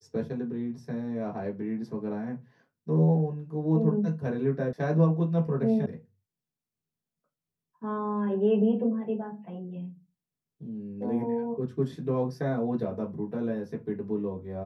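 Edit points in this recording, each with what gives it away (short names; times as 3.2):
4.73 sound cut off
5.86 sound cut off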